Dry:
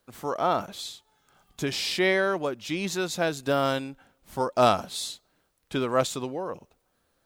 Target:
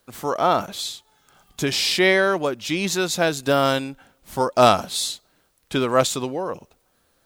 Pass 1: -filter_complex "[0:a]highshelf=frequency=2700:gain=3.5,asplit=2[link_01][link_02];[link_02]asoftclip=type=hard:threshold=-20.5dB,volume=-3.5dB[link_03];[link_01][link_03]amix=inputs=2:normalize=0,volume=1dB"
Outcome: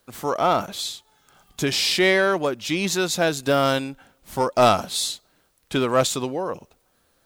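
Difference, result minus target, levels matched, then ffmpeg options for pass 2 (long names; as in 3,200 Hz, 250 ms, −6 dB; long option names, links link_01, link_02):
hard clipping: distortion +23 dB
-filter_complex "[0:a]highshelf=frequency=2700:gain=3.5,asplit=2[link_01][link_02];[link_02]asoftclip=type=hard:threshold=-9dB,volume=-3.5dB[link_03];[link_01][link_03]amix=inputs=2:normalize=0,volume=1dB"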